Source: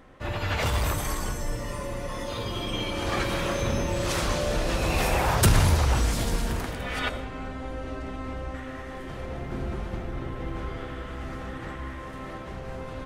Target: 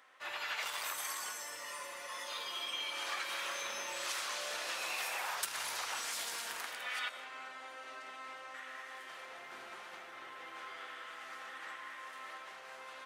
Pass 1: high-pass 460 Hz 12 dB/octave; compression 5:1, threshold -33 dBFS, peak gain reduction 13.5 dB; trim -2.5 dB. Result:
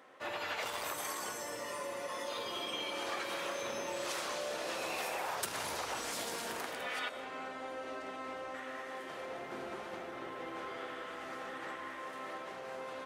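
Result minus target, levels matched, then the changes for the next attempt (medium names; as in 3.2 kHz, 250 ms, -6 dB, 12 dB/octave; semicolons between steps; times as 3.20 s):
500 Hz band +9.5 dB
change: high-pass 1.2 kHz 12 dB/octave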